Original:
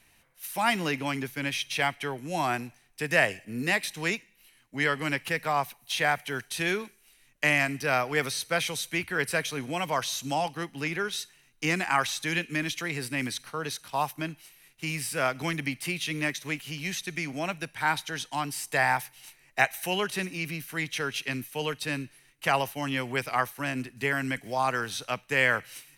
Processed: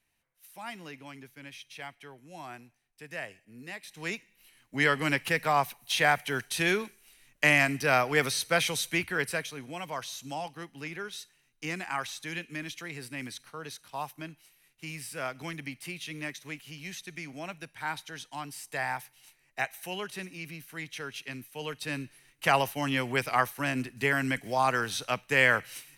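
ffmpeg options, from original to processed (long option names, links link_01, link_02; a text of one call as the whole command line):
ffmpeg -i in.wav -af "volume=10.5dB,afade=type=in:start_time=3.83:duration=0.23:silence=0.354813,afade=type=in:start_time=4.06:duration=0.71:silence=0.398107,afade=type=out:start_time=8.9:duration=0.64:silence=0.334965,afade=type=in:start_time=21.53:duration=0.93:silence=0.354813" out.wav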